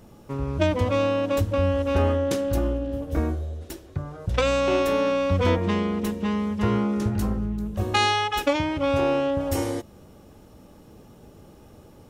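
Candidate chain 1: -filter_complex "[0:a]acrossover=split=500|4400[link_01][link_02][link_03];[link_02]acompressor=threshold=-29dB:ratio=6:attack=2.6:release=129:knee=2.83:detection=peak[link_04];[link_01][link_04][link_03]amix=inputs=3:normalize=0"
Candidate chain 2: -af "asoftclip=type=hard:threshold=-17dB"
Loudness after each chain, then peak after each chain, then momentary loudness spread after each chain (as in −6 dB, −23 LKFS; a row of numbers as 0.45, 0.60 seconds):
−26.0, −25.0 LKFS; −9.5, −17.0 dBFS; 7, 9 LU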